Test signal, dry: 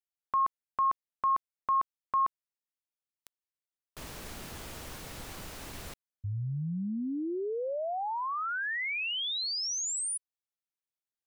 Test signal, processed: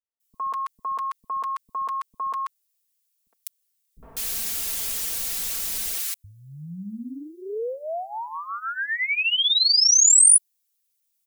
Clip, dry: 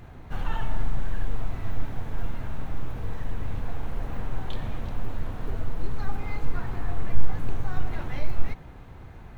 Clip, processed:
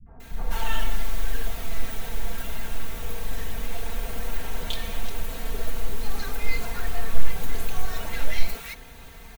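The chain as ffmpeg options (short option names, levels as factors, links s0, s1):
-filter_complex "[0:a]adynamicequalizer=threshold=0.00398:dfrequency=520:dqfactor=1.9:tfrequency=520:tqfactor=1.9:attack=5:release=100:ratio=0.375:range=2:mode=boostabove:tftype=bell,aecho=1:1:4.4:0.77,crystalizer=i=9:c=0,acrossover=split=240|1100[s0][s1][s2];[s1]adelay=60[s3];[s2]adelay=200[s4];[s0][s3][s4]amix=inputs=3:normalize=0,volume=0.708"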